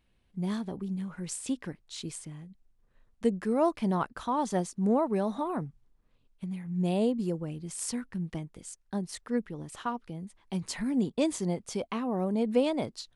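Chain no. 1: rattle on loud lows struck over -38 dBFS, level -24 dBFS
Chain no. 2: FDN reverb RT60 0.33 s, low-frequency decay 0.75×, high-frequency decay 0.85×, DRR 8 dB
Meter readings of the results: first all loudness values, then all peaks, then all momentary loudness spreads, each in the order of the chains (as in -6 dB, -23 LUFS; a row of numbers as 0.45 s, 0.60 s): -31.5 LUFS, -31.5 LUFS; -12.0 dBFS, -12.5 dBFS; 13 LU, 14 LU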